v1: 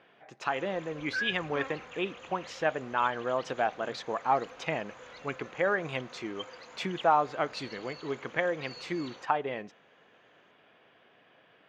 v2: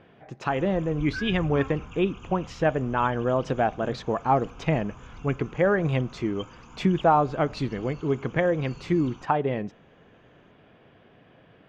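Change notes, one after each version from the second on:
background: add fixed phaser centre 2800 Hz, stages 8; master: remove HPF 990 Hz 6 dB/oct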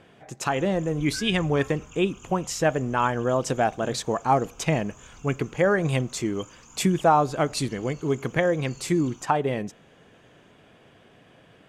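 background -6.5 dB; master: remove air absorption 250 m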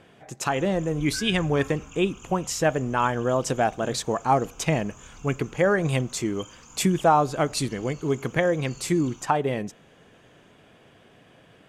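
speech: add high shelf 7300 Hz +4 dB; reverb: on, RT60 1.4 s

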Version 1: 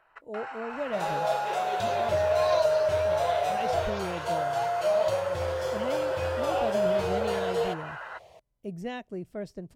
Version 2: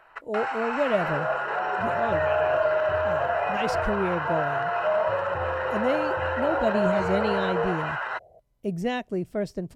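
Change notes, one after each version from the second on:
speech +8.0 dB; first sound +9.5 dB; second sound: add steep low-pass 770 Hz 72 dB/oct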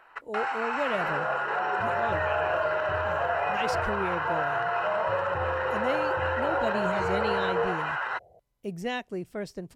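speech: add low shelf 470 Hz -8 dB; master: add bell 630 Hz -6.5 dB 0.2 oct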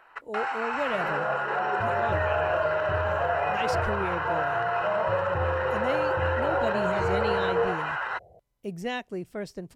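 second sound: add low shelf 410 Hz +6.5 dB

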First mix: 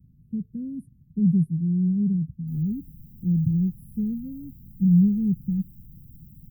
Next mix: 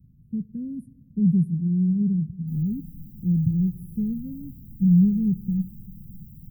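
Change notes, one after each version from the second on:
reverb: on, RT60 2.2 s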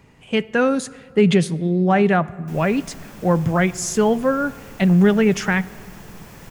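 master: remove inverse Chebyshev band-stop 630–7000 Hz, stop band 60 dB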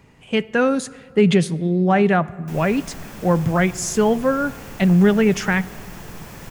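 background +4.0 dB

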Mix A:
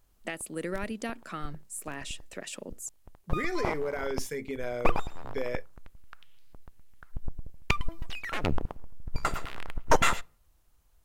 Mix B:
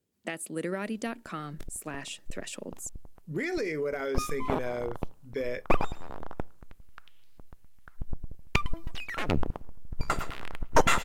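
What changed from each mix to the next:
background: entry +0.85 s; master: add bell 230 Hz +2.5 dB 2.1 oct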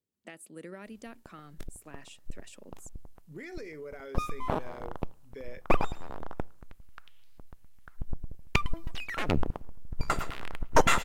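speech -11.5 dB

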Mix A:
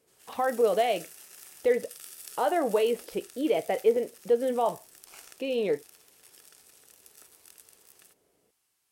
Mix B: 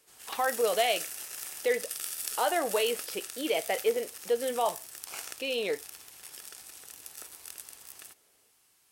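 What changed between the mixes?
speech: add tilt +4 dB/oct; background +9.0 dB

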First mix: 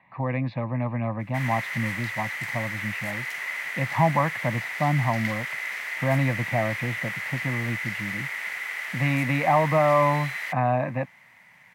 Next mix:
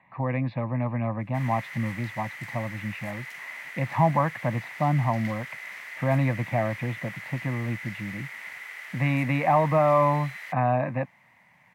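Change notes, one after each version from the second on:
speech: add air absorption 130 m; background -8.0 dB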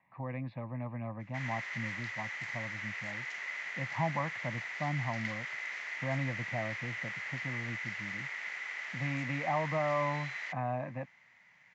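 speech -11.5 dB; master: add steep low-pass 7300 Hz 96 dB/oct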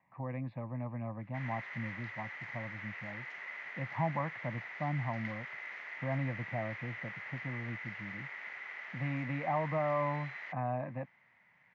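background: add air absorption 120 m; master: add high shelf 3000 Hz -11.5 dB

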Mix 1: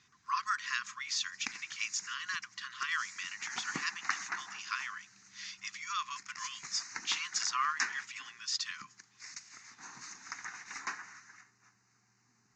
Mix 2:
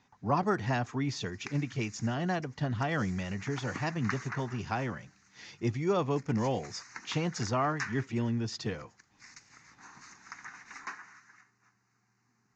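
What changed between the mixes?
speech: remove brick-wall FIR high-pass 1000 Hz; master: add high shelf 3100 Hz -9.5 dB

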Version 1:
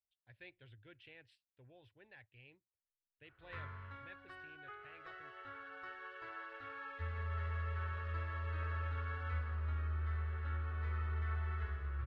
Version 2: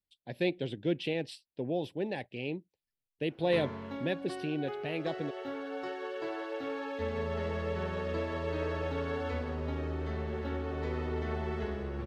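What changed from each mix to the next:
speech +10.0 dB; master: remove EQ curve 110 Hz 0 dB, 170 Hz -26 dB, 830 Hz -17 dB, 1300 Hz +1 dB, 5600 Hz -20 dB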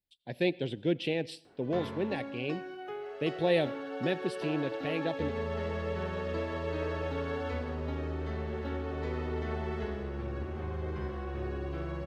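background: entry -1.80 s; reverb: on, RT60 0.55 s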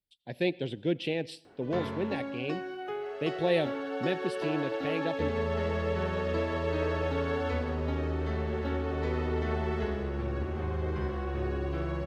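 background +4.0 dB

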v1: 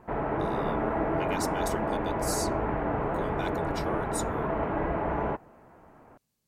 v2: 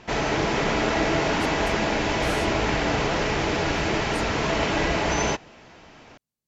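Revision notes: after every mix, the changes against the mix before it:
speech -10.0 dB; background: remove ladder low-pass 1600 Hz, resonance 20%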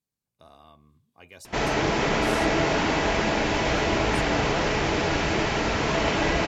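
background: entry +1.45 s

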